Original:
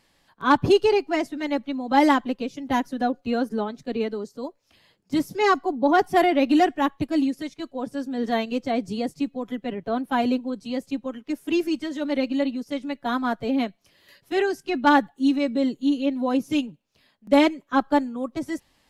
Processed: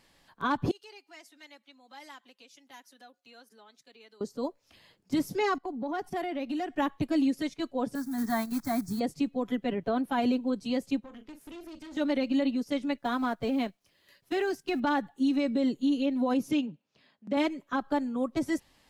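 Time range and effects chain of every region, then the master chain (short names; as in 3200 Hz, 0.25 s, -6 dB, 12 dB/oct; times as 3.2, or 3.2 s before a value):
0.71–4.21 LPF 3900 Hz 6 dB/oct + compressor 2.5:1, threshold -31 dBFS + differentiator
5.58–6.76 gate -41 dBFS, range -14 dB + compressor 3:1, threshold -35 dBFS
7.95–9.01 block floating point 5-bit + high shelf 8700 Hz +6 dB + fixed phaser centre 1200 Hz, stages 4
11–11.97 compressor 5:1, threshold -37 dBFS + doubler 41 ms -10 dB + tube stage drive 41 dB, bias 0.8
12.98–14.8 G.711 law mismatch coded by A + compressor 5:1, threshold -25 dBFS
16.51–17.37 Chebyshev high-pass 150 Hz + air absorption 84 m
whole clip: compressor, threshold -20 dBFS; limiter -19.5 dBFS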